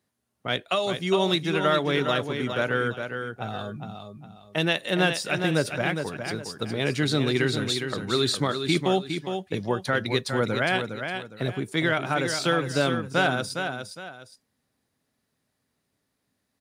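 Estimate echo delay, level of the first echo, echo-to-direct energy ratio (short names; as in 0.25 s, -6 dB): 0.41 s, -7.0 dB, -6.5 dB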